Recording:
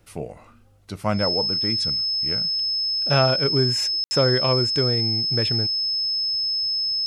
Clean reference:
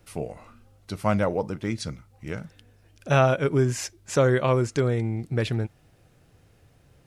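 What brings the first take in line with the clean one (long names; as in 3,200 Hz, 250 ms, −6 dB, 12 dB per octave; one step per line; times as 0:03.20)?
notch filter 5,200 Hz, Q 30
ambience match 0:04.04–0:04.11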